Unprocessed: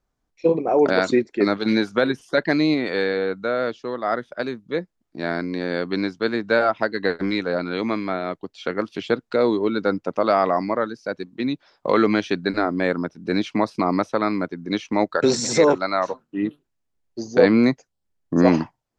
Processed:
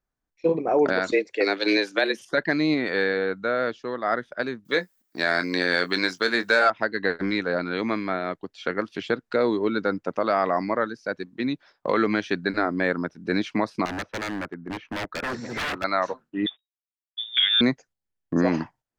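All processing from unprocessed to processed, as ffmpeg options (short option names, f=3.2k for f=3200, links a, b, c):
-filter_complex "[0:a]asettb=1/sr,asplit=3[a][b][c];[a]atrim=end=1.124[d];[b]atrim=start=1.12:end=2.25,asetpts=PTS-STARTPTS,afade=t=in:d=0.004:c=qsin,afade=t=out:st=1.126:d=0.004:c=qsin,highshelf=f=1.8k:t=q:w=1.5:g=6,afreqshift=94[e];[c]atrim=start=2.246[f];[d][e]acrossfade=d=0.004:c1=hsin:c2=qsin[g];[g][f]acrossfade=d=0.004:c1=qsin:c2=hsin,asettb=1/sr,asplit=3[h][i][j];[h]atrim=end=4.654[k];[i]atrim=start=4.65:end=6.7,asetpts=PTS-STARTPTS,afade=t=in:d=0.004:c=qsin,afade=t=out:st=2.046:d=0.004:c=qsin,aemphasis=mode=production:type=riaa,acontrast=77,asplit=2[l][m];[m]adelay=22,volume=-11dB[n];[l][n]amix=inputs=2:normalize=0,atrim=end_sample=90405[o];[j]atrim=start=6.696[p];[k][o]acrossfade=d=0.004:c1=hsin:c2=qsin[q];[q][p]acrossfade=d=0.004:c1=qsin:c2=hsin,asettb=1/sr,asplit=3[r][s][t];[r]atrim=end=13.854[u];[s]atrim=start=13.85:end=15.84,asetpts=PTS-STARTPTS,afade=t=in:d=0.004:c=qsin,afade=t=out:st=1.986:d=0.004:c=qsin,lowpass=1.8k,equalizer=f=190:w=0.57:g=-2.5,aeval=exprs='0.075*(abs(mod(val(0)/0.075+3,4)-2)-1)':c=same[v];[t]atrim=start=15.836[w];[u][v]acrossfade=d=0.004:c1=hsin:c2=qsin[x];[x][w]acrossfade=d=0.004:c1=qsin:c2=hsin,asettb=1/sr,asplit=3[y][z][aa];[y]atrim=end=16.464[ab];[z]atrim=start=16.46:end=17.61,asetpts=PTS-STARTPTS,afade=t=in:d=0.004:c=qsin,afade=t=out:st=1.146:d=0.004:c=qsin,acrusher=bits=8:mix=0:aa=0.5,lowpass=f=3.2k:t=q:w=0.5098,lowpass=f=3.2k:t=q:w=0.6013,lowpass=f=3.2k:t=q:w=0.9,lowpass=f=3.2k:t=q:w=2.563,afreqshift=-3800[ac];[aa]atrim=start=17.606[ad];[ab][ac]acrossfade=d=0.004:c1=hsin:c2=qsin[ae];[ae][ad]acrossfade=d=0.004:c1=qsin:c2=hsin,agate=range=-7dB:threshold=-46dB:ratio=16:detection=peak,alimiter=limit=-9dB:level=0:latency=1:release=234,equalizer=f=1.7k:w=2.2:g=5.5,volume=-2.5dB"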